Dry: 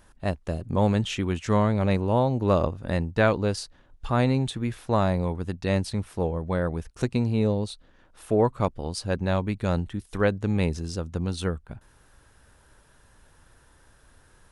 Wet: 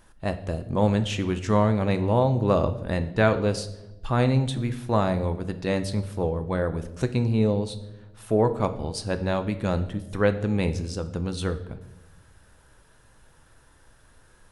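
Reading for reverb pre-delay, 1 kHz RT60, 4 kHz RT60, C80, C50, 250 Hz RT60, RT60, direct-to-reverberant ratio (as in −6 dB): 6 ms, 0.85 s, 0.75 s, 16.0 dB, 13.5 dB, 1.3 s, 1.0 s, 9.0 dB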